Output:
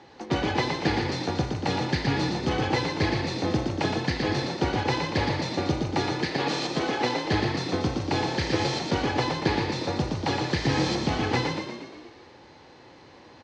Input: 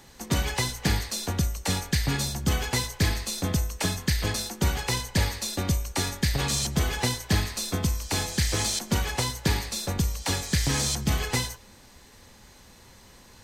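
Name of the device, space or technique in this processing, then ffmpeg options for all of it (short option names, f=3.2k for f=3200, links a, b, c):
frequency-shifting delay pedal into a guitar cabinet: -filter_complex "[0:a]asettb=1/sr,asplit=3[a][b][c];[a]atrim=end=6.174[d];[b]atrim=start=6.17:end=7.25,asetpts=PTS-STARTPTS,afade=t=in:d=0.004:c=qsin,afade=t=out:st=1.076:d=0.004:c=qsin,highpass=180[e];[c]atrim=start=7.246[f];[d][e]acrossfade=d=0.004:c1=hsin:c2=qsin[g];[g][f]acrossfade=d=0.004:c1=qsin:c2=hsin,asplit=9[h][i][j][k][l][m][n][o][p];[i]adelay=118,afreqshift=36,volume=-4.5dB[q];[j]adelay=236,afreqshift=72,volume=-9.4dB[r];[k]adelay=354,afreqshift=108,volume=-14.3dB[s];[l]adelay=472,afreqshift=144,volume=-19.1dB[t];[m]adelay=590,afreqshift=180,volume=-24dB[u];[n]adelay=708,afreqshift=216,volume=-28.9dB[v];[o]adelay=826,afreqshift=252,volume=-33.8dB[w];[p]adelay=944,afreqshift=288,volume=-38.7dB[x];[h][q][r][s][t][u][v][w][x]amix=inputs=9:normalize=0,highpass=110,equalizer=f=200:t=q:w=4:g=-5,equalizer=f=330:t=q:w=4:g=9,equalizer=f=490:t=q:w=4:g=5,equalizer=f=800:t=q:w=4:g=7,equalizer=f=3.5k:t=q:w=4:g=-3,lowpass=f=4.5k:w=0.5412,lowpass=f=4.5k:w=1.3066"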